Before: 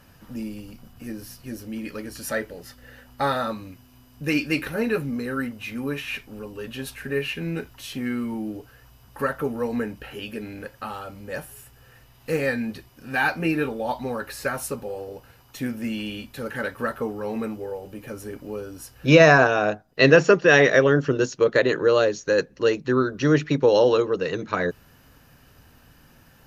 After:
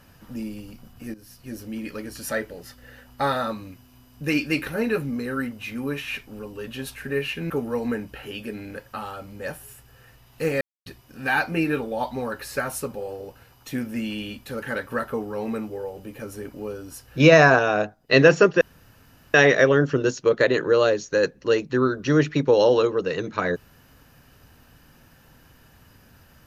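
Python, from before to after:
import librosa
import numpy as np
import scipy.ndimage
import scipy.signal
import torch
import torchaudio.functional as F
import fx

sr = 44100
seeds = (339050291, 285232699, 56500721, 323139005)

y = fx.edit(x, sr, fx.fade_in_from(start_s=1.14, length_s=0.44, floor_db=-14.0),
    fx.cut(start_s=7.5, length_s=1.88),
    fx.silence(start_s=12.49, length_s=0.25),
    fx.insert_room_tone(at_s=20.49, length_s=0.73), tone=tone)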